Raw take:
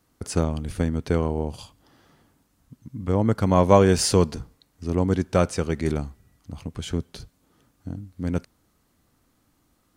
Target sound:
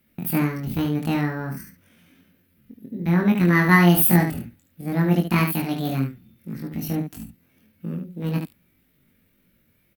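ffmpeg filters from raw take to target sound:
-filter_complex "[0:a]equalizer=f=125:t=o:w=1:g=8,equalizer=f=250:t=o:w=1:g=-9,equalizer=f=500:t=o:w=1:g=-10,equalizer=f=1k:t=o:w=1:g=3,equalizer=f=4k:t=o:w=1:g=-12,equalizer=f=8k:t=o:w=1:g=11,asetrate=80880,aresample=44100,atempo=0.545254,asplit=2[a][b];[b]aecho=0:1:23|74:0.668|0.501[c];[a][c]amix=inputs=2:normalize=0"

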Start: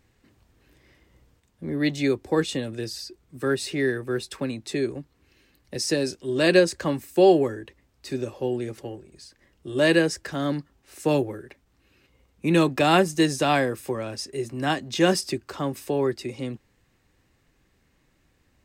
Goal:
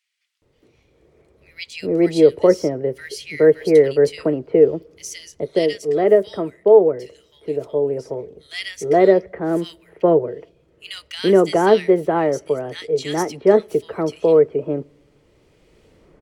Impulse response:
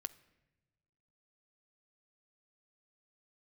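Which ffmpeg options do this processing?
-filter_complex "[0:a]lowpass=f=3.6k:p=1,equalizer=f=400:w=1.8:g=10.5,dynaudnorm=f=760:g=3:m=15dB,asetrate=50715,aresample=44100,acrossover=split=2000[a][b];[a]adelay=420[c];[c][b]amix=inputs=2:normalize=0,asplit=2[d][e];[1:a]atrim=start_sample=2205[f];[e][f]afir=irnorm=-1:irlink=0,volume=-6.5dB[g];[d][g]amix=inputs=2:normalize=0,volume=-3dB"

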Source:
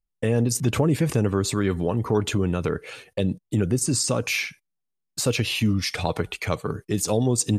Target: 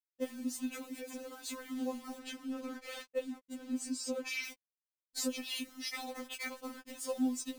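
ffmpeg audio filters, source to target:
-filter_complex "[0:a]alimiter=limit=-18dB:level=0:latency=1:release=359,highpass=f=73:w=0.5412,highpass=f=73:w=1.3066,bass=f=250:g=6,treble=f=4k:g=0,acrusher=bits=6:mix=0:aa=0.000001,acompressor=threshold=-32dB:ratio=5,asettb=1/sr,asplit=3[a][b][c];[a]atrim=end=2.184[d];[b]atrim=start=2.18:end=4.44,asetpts=PTS-STARTPTS,afade=t=in:d=0.004:c=qsin,afade=t=out:st=2.256:d=0.004:c=qsin,highshelf=f=6.7k:g=-8.5[e];[c]atrim=start=4.436[f];[d][e]acrossfade=d=0.004:c1=hsin:c2=qsin[g];[g][f]acrossfade=d=0.004:c1=qsin:c2=hsin,afftfilt=real='re*3.46*eq(mod(b,12),0)':imag='im*3.46*eq(mod(b,12),0)':win_size=2048:overlap=0.75,volume=1dB"

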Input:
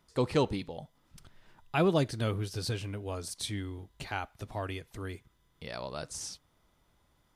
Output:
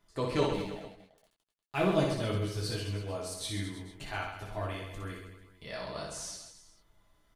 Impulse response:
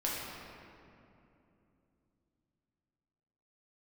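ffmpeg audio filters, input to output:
-filter_complex "[0:a]asettb=1/sr,asplit=3[a][b][c];[a]atrim=end=0.454[d];[b]atrim=start=0.45:end=1.9,asetpts=PTS-STARTPTS,afade=t=in:d=0.004:c=qsin,afade=t=out:st=1.446:d=0.004:c=qsin,aeval=exprs='sgn(val(0))*max(abs(val(0))-0.00668,0)':c=same[e];[c]atrim=start=1.896[f];[d][e]acrossfade=d=0.004:c1=hsin:c2=qsin[g];[g][f]acrossfade=d=0.004:c1=qsin:c2=hsin,aecho=1:1:60|132|218.4|322.1|446.5:0.631|0.398|0.251|0.158|0.1[h];[1:a]atrim=start_sample=2205,atrim=end_sample=3087,asetrate=88200,aresample=44100[i];[h][i]afir=irnorm=-1:irlink=0,volume=1.5dB"

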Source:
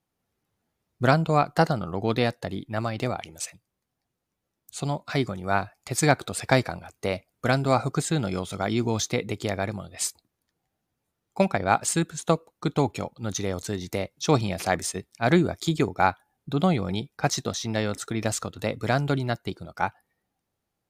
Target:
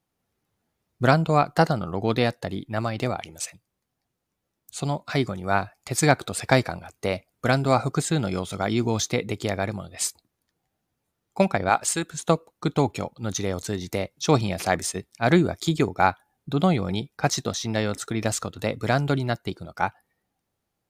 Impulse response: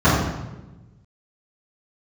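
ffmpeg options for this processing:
-filter_complex "[0:a]asettb=1/sr,asplit=3[a][b][c];[a]atrim=end=11.694[d];[b]atrim=start=11.69:end=12.14,asetpts=PTS-STARTPTS,afade=t=in:d=0.004:c=qsin,afade=t=out:st=0.446:d=0.004:c=qsin,equalizer=f=140:w=0.58:g=-9[e];[c]atrim=start=12.136[f];[d][e]acrossfade=d=0.004:c1=hsin:c2=qsin[g];[g][f]acrossfade=d=0.004:c1=qsin:c2=hsin,volume=1.5dB"

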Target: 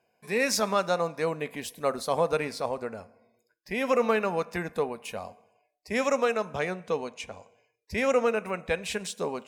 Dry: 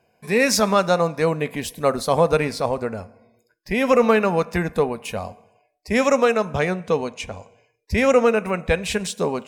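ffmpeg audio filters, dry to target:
-af "lowshelf=f=150:g=-11.5,volume=-7dB"

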